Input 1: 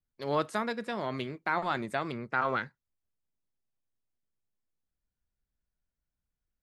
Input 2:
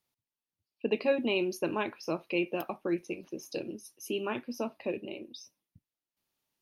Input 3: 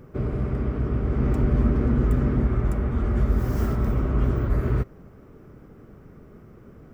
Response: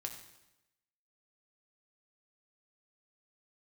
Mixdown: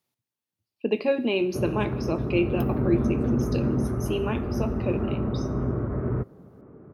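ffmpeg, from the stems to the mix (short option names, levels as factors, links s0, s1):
-filter_complex "[0:a]acompressor=threshold=0.02:ratio=6,adelay=1300,volume=0.2[s0];[1:a]lowshelf=f=400:g=6,volume=0.841,asplit=2[s1][s2];[s2]volume=0.668[s3];[2:a]lowpass=1100,acompressor=mode=upward:threshold=0.00891:ratio=2.5,adelay=1400,volume=1[s4];[3:a]atrim=start_sample=2205[s5];[s3][s5]afir=irnorm=-1:irlink=0[s6];[s0][s1][s4][s6]amix=inputs=4:normalize=0,highpass=110"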